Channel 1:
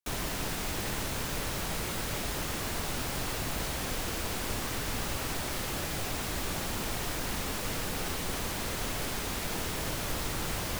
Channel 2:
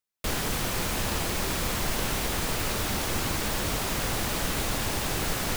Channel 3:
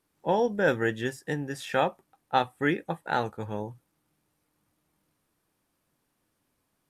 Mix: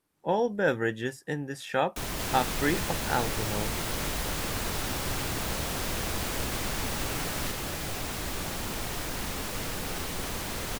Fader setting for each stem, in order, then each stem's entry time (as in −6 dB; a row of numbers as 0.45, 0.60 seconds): 0.0, −7.0, −1.5 decibels; 1.90, 1.95, 0.00 seconds